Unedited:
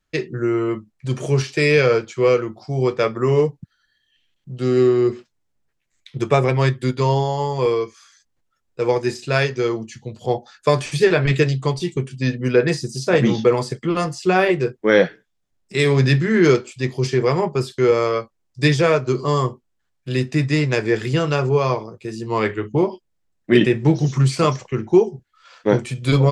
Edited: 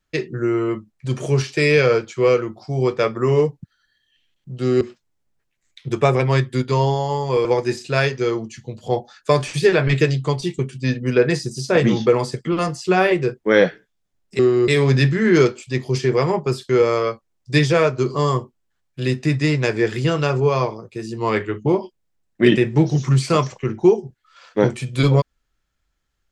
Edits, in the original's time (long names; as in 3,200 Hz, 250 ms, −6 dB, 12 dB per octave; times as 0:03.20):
0:04.81–0:05.10: move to 0:15.77
0:07.74–0:08.83: remove